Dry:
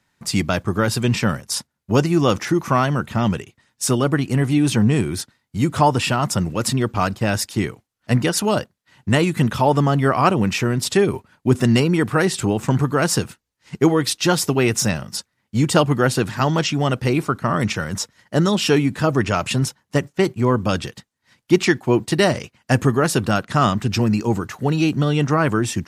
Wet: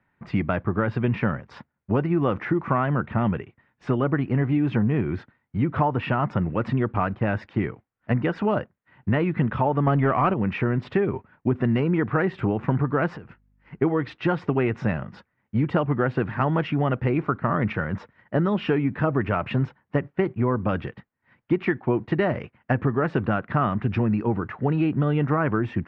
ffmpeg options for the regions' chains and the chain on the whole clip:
-filter_complex "[0:a]asettb=1/sr,asplit=3[s0][s1][s2];[s0]atrim=end=9.874[s3];[s1]atrim=start=9.87:end=10.34,asetpts=PTS-STARTPTS,afade=t=in:d=0.004:c=qsin,afade=t=out:st=0.466:d=0.004:c=qsin,highshelf=f=7500:g=12,acontrast=81[s4];[s2]atrim=start=10.336[s5];[s3][s4]acrossfade=d=0.004:c1=hsin:c2=qsin[s6];[s6][s5]acrossfade=d=0.004:c1=qsin:c2=hsin,asettb=1/sr,asplit=3[s7][s8][s9];[s7]atrim=end=13.164[s10];[s8]atrim=start=13.16:end=13.8,asetpts=PTS-STARTPTS,afade=t=in:d=0.004:c=qsin,afade=t=out:st=0.636:d=0.004:c=qsin,equalizer=f=3700:w=8:g=-9,acompressor=threshold=0.02:ratio=6:attack=3.2:release=140:knee=1:detection=peak,aeval=exprs='val(0)+0.000891*(sin(2*PI*50*n/s)+sin(2*PI*2*50*n/s)/2+sin(2*PI*3*50*n/s)/3+sin(2*PI*4*50*n/s)/4+sin(2*PI*5*50*n/s)/5)':c=same[s11];[s9]atrim=start=13.796[s12];[s10][s11]acrossfade=d=0.004:c1=hsin:c2=qsin[s13];[s13][s12]acrossfade=d=0.004:c1=qsin:c2=hsin,lowpass=f=2200:w=0.5412,lowpass=f=2200:w=1.3066,acompressor=threshold=0.141:ratio=6,volume=0.891"

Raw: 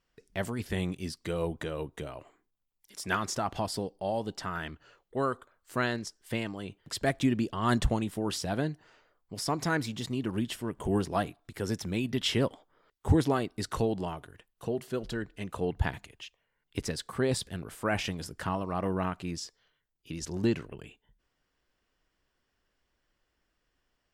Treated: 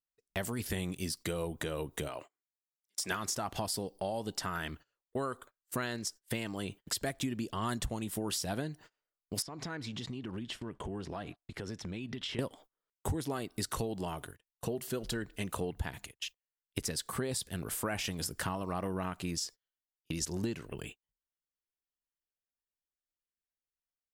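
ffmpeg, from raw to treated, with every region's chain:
-filter_complex "[0:a]asettb=1/sr,asplit=3[s0][s1][s2];[s0]atrim=end=2.084[s3];[s1]atrim=start=2.08:end=3.11,asetpts=PTS-STARTPTS,afade=t=in:d=0.004:c=qsin,afade=t=out:st=1.026:d=0.004:c=qsin,highpass=f=340:p=1,equalizer=f=12000:t=o:w=0.38:g=-14[s4];[s2]atrim=start=3.106[s5];[s3][s4]acrossfade=d=0.004:c1=hsin:c2=qsin[s6];[s6][s5]acrossfade=d=0.004:c1=qsin:c2=hsin,asettb=1/sr,asplit=3[s7][s8][s9];[s7]atrim=end=9.424[s10];[s8]atrim=start=9.42:end=12.39,asetpts=PTS-STARTPTS,afade=t=in:d=0.004:c=qsin,afade=t=out:st=2.966:d=0.004:c=qsin,acompressor=threshold=0.01:ratio=8:attack=3.2:release=140:knee=1:detection=peak,lowpass=4000[s11];[s9]atrim=start=12.386[s12];[s10][s11]acrossfade=d=0.004:c1=hsin:c2=qsin[s13];[s13][s12]acrossfade=d=0.004:c1=qsin:c2=hsin,agate=range=0.0251:threshold=0.00355:ratio=16:detection=peak,aemphasis=mode=production:type=50kf,acompressor=threshold=0.0158:ratio=6,volume=1.5"

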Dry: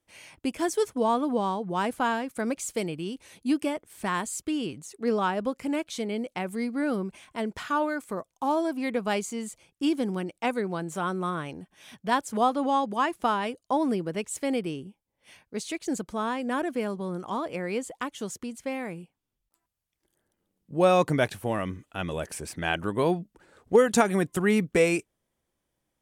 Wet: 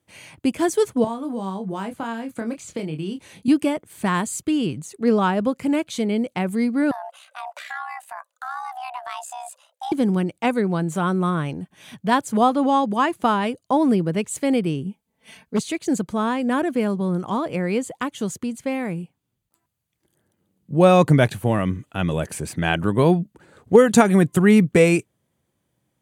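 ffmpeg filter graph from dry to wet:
-filter_complex "[0:a]asettb=1/sr,asplit=3[s0][s1][s2];[s0]atrim=end=1.044[s3];[s1]atrim=start=1.04:end=3.48,asetpts=PTS-STARTPTS,afade=t=in:d=0.004:c=qsin,afade=t=out:st=2.436:d=0.004:c=qsin,acrossover=split=120|6200[s4][s5][s6];[s4]acompressor=threshold=0.00112:ratio=4[s7];[s5]acompressor=threshold=0.0178:ratio=4[s8];[s6]acompressor=threshold=0.001:ratio=4[s9];[s7][s8][s9]amix=inputs=3:normalize=0,asplit=2[s10][s11];[s11]adelay=26,volume=0.447[s12];[s10][s12]amix=inputs=2:normalize=0,atrim=end_sample=107604[s13];[s2]atrim=start=3.476[s14];[s3][s13]acrossfade=d=0.004:c1=hsin:c2=qsin[s15];[s15][s14]acrossfade=d=0.004:c1=qsin:c2=hsin,asettb=1/sr,asplit=3[s16][s17][s18];[s16]atrim=end=6.914[s19];[s17]atrim=start=6.91:end=9.92,asetpts=PTS-STARTPTS,afade=t=in:d=0.004:c=qsin,afade=t=out:st=3.006:d=0.004:c=qsin,afreqshift=500,acompressor=threshold=0.0141:ratio=2:attack=3.2:release=140:knee=1:detection=peak,tremolo=f=65:d=0.571[s20];[s18]atrim=start=9.916[s21];[s19][s20]acrossfade=d=0.004:c1=hsin:c2=qsin[s22];[s22][s21]acrossfade=d=0.004:c1=qsin:c2=hsin,asettb=1/sr,asplit=3[s23][s24][s25];[s23]atrim=end=14.844[s26];[s24]atrim=start=14.84:end=15.6,asetpts=PTS-STARTPTS,afade=t=in:d=0.004:c=qsin,afade=t=out:st=0.756:d=0.004:c=qsin,aecho=1:1:4.5:0.85,atrim=end_sample=33516,aeval=exprs='0.0841*(abs(mod(val(0)/0.0841+3,4)-2)-1)':c=same[s27];[s25]atrim=start=15.596[s28];[s26][s27]acrossfade=d=0.004:c1=hsin:c2=qsin[s29];[s29][s28]acrossfade=d=0.004:c1=qsin:c2=hsin,highpass=72,equalizer=f=130:w=0.79:g=9,bandreject=f=5400:w=9.7,volume=1.78"

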